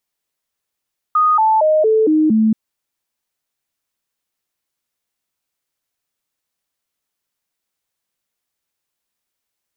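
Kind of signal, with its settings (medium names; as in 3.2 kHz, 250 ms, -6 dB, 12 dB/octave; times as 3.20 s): stepped sine 1.24 kHz down, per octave 2, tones 6, 0.23 s, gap 0.00 s -10 dBFS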